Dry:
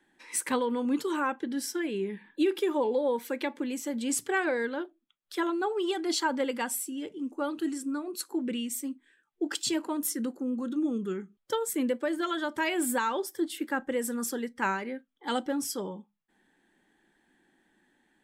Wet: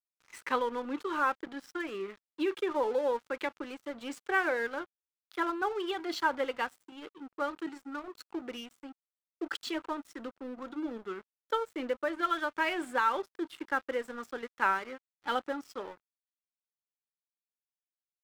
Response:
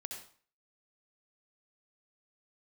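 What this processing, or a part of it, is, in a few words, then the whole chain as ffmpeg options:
pocket radio on a weak battery: -af "highpass=400,lowpass=3400,aeval=exprs='sgn(val(0))*max(abs(val(0))-0.00473,0)':c=same,equalizer=f=1300:t=o:w=0.41:g=6"

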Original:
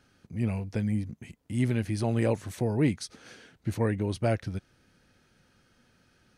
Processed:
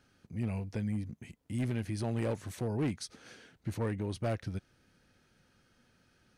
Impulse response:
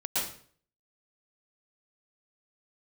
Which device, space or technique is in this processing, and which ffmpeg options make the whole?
clipper into limiter: -af "asoftclip=type=hard:threshold=0.0891,alimiter=limit=0.0668:level=0:latency=1:release=98,volume=0.668"

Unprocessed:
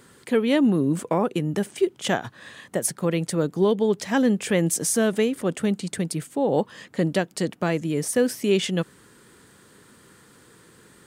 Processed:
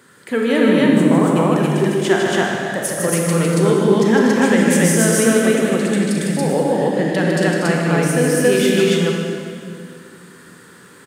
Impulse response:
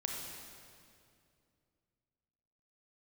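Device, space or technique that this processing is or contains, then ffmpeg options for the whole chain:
stadium PA: -filter_complex "[0:a]highpass=120,equalizer=f=1600:t=o:w=0.76:g=5.5,aecho=1:1:154.5|239.1|279.9:0.562|0.355|1[s0];[1:a]atrim=start_sample=2205[s1];[s0][s1]afir=irnorm=-1:irlink=0,volume=1.19"

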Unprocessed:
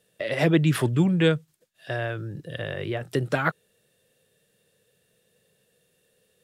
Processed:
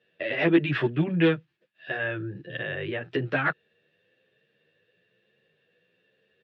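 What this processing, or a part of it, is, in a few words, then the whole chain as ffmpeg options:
barber-pole flanger into a guitar amplifier: -filter_complex "[0:a]asplit=2[s0][s1];[s1]adelay=10.7,afreqshift=1.1[s2];[s0][s2]amix=inputs=2:normalize=1,asoftclip=type=tanh:threshold=0.178,highpass=100,equalizer=f=340:t=q:w=4:g=6,equalizer=f=1700:t=q:w=4:g=8,equalizer=f=2600:t=q:w=4:g=7,lowpass=f=3800:w=0.5412,lowpass=f=3800:w=1.3066"

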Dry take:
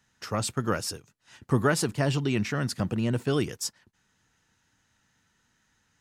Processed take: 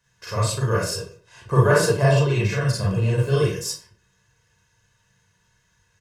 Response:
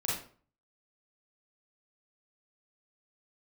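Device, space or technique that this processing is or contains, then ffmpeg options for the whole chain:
microphone above a desk: -filter_complex "[0:a]asettb=1/sr,asplit=3[s0][s1][s2];[s0]atrim=end=0.924[s3];[s1]atrim=start=0.92:end=2.3,asetpts=PTS-STARTPTS,afade=t=in:d=0.004:c=qsin,afade=t=out:st=1.376:d=0.004:c=qsin,equalizer=f=700:w=0.6:g=5[s4];[s2]atrim=start=2.296[s5];[s3][s4]acrossfade=d=0.004:c1=hsin:c2=qsin[s6];[s6][s5]acrossfade=d=0.004:c1=qsin:c2=hsin,aecho=1:1:1.9:0.89[s7];[1:a]atrim=start_sample=2205[s8];[s7][s8]afir=irnorm=-1:irlink=0,volume=0.708"

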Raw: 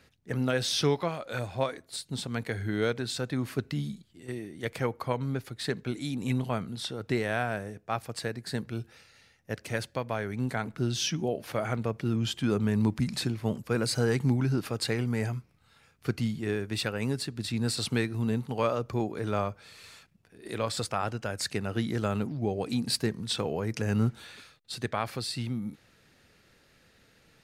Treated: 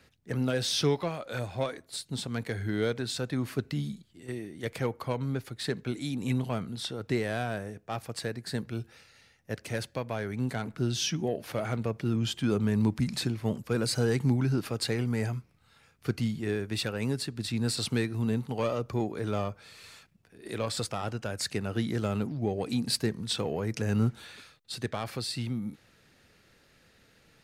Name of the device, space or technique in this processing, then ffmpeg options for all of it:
one-band saturation: -filter_complex "[0:a]acrossover=split=600|2800[s0][s1][s2];[s1]asoftclip=type=tanh:threshold=0.0224[s3];[s0][s3][s2]amix=inputs=3:normalize=0"

